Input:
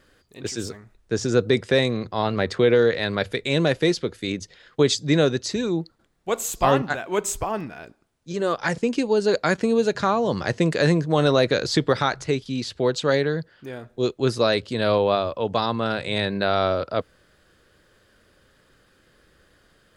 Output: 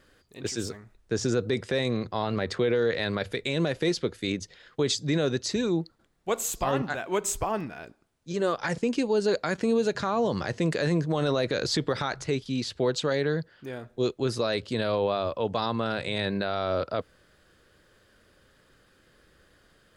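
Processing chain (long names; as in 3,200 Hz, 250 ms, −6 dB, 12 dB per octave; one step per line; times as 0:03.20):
brickwall limiter −14 dBFS, peak gain reduction 10.5 dB
level −2 dB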